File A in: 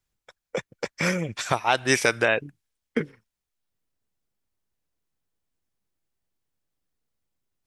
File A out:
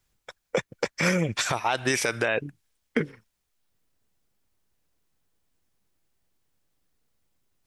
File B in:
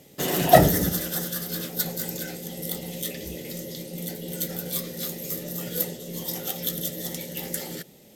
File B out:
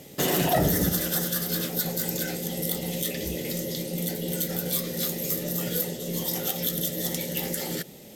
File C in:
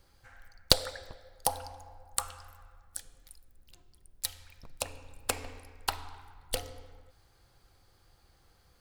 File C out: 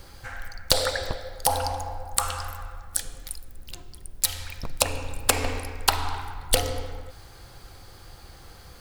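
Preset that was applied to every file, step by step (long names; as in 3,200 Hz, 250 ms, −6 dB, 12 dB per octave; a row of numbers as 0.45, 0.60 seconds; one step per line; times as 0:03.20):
in parallel at +1.5 dB: downward compressor, threshold −34 dBFS
on the sum: boost into a limiter +11.5 dB
loudness normalisation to −27 LKFS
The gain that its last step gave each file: −11.0, −12.5, −0.5 decibels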